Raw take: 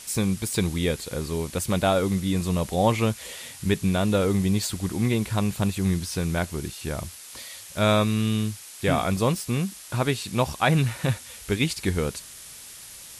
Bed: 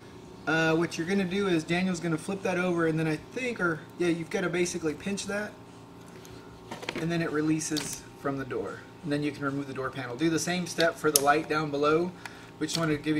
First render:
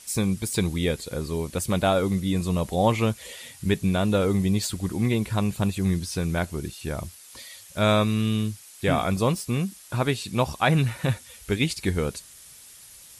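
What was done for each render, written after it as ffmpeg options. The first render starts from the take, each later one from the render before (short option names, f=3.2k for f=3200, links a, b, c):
-af "afftdn=nr=7:nf=-43"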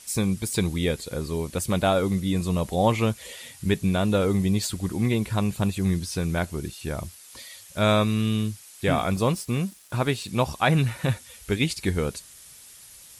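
-filter_complex "[0:a]asettb=1/sr,asplit=3[a][b][c];[a]atrim=end=8.884[d];[b]atrim=start=8.88:end=10.29,asetpts=PTS-STARTPTS,afade=t=in:d=0.004:c=qsin,afade=t=out:st=1.406:d=0.004:c=qsin,aeval=exprs='sgn(val(0))*max(abs(val(0))-0.00237,0)':c=same[e];[c]atrim=start=10.286[f];[d][e]acrossfade=d=0.004:c1=hsin:c2=qsin[g];[g][f]acrossfade=d=0.004:c1=qsin:c2=hsin"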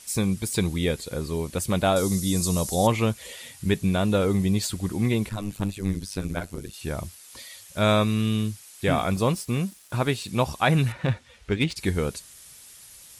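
-filter_complex "[0:a]asettb=1/sr,asplit=3[a][b][c];[a]atrim=end=1.964[d];[b]atrim=start=1.96:end=2.87,asetpts=PTS-STARTPTS,afade=t=in:d=0.004:c=qsin,afade=t=out:st=0.906:d=0.004:c=qsin,highshelf=f=3.9k:t=q:w=1.5:g=12[e];[c]atrim=start=2.866[f];[d][e]acrossfade=d=0.004:c1=hsin:c2=qsin[g];[g][f]acrossfade=d=0.004:c1=qsin:c2=hsin,asettb=1/sr,asplit=3[h][i][j];[h]atrim=end=5.294[k];[i]atrim=start=5.29:end=6.74,asetpts=PTS-STARTPTS,afade=t=in:d=0.004:c=qsin,afade=t=out:st=1.446:d=0.004:c=qsin,tremolo=f=100:d=0.947[l];[j]atrim=start=6.736[m];[k][l]acrossfade=d=0.004:c1=hsin:c2=qsin[n];[n][m]acrossfade=d=0.004:c1=qsin:c2=hsin,asettb=1/sr,asplit=3[o][p][q];[o]atrim=end=10.924[r];[p]atrim=start=10.92:end=11.76,asetpts=PTS-STARTPTS,afade=t=in:d=0.004:c=qsin,afade=t=out:st=0.836:d=0.004:c=qsin,adynamicsmooth=sensitivity=2:basefreq=3.6k[s];[q]atrim=start=11.756[t];[r][s]acrossfade=d=0.004:c1=hsin:c2=qsin[u];[u][t]acrossfade=d=0.004:c1=qsin:c2=hsin"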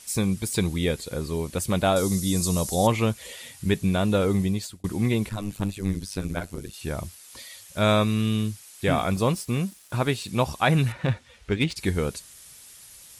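-filter_complex "[0:a]asplit=2[a][b];[a]atrim=end=4.84,asetpts=PTS-STARTPTS,afade=t=out:st=4.4:d=0.44[c];[b]atrim=start=4.84,asetpts=PTS-STARTPTS,afade=t=in:d=0.004:c=hsin[d];[c][d]concat=n=2:v=0:a=1"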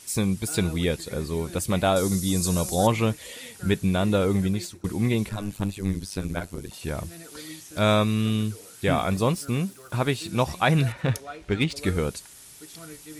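-filter_complex "[1:a]volume=-16dB[a];[0:a][a]amix=inputs=2:normalize=0"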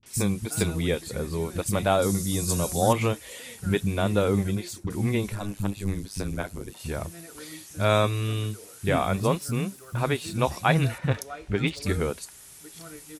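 -filter_complex "[0:a]acrossover=split=210|4000[a][b][c];[b]adelay=30[d];[c]adelay=60[e];[a][d][e]amix=inputs=3:normalize=0"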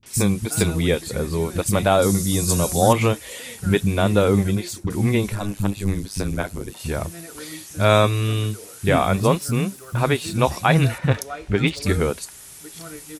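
-af "volume=6dB,alimiter=limit=-3dB:level=0:latency=1"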